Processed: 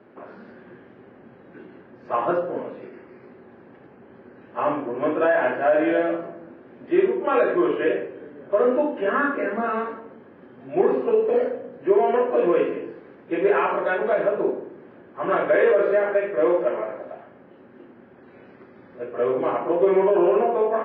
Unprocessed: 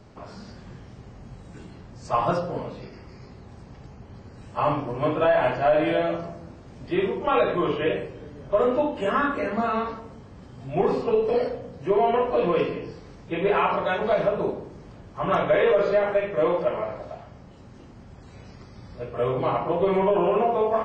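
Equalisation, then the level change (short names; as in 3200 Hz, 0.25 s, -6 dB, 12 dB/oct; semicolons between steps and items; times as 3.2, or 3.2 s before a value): speaker cabinet 240–2800 Hz, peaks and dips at 250 Hz +6 dB, 360 Hz +9 dB, 530 Hz +5 dB, 1600 Hz +8 dB; -2.0 dB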